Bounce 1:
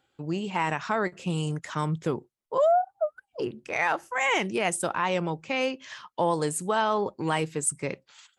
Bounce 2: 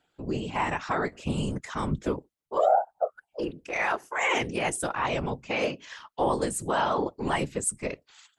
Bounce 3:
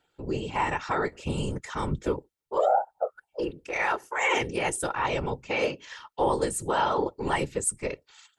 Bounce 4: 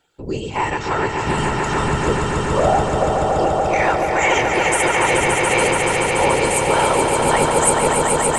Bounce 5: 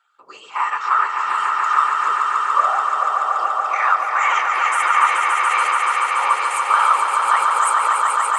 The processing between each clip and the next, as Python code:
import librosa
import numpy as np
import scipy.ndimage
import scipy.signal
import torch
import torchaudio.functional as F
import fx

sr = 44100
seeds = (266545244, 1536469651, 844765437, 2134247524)

y1 = fx.whisperise(x, sr, seeds[0])
y1 = y1 * librosa.db_to_amplitude(-1.0)
y2 = y1 + 0.35 * np.pad(y1, (int(2.2 * sr / 1000.0), 0))[:len(y1)]
y3 = fx.peak_eq(y2, sr, hz=7100.0, db=5.0, octaves=1.2)
y3 = fx.echo_swell(y3, sr, ms=143, loudest=5, wet_db=-5.0)
y3 = y3 * librosa.db_to_amplitude(5.5)
y4 = fx.highpass_res(y3, sr, hz=1200.0, q=15.0)
y4 = fx.high_shelf(y4, sr, hz=6200.0, db=-5.5)
y4 = y4 * librosa.db_to_amplitude(-5.5)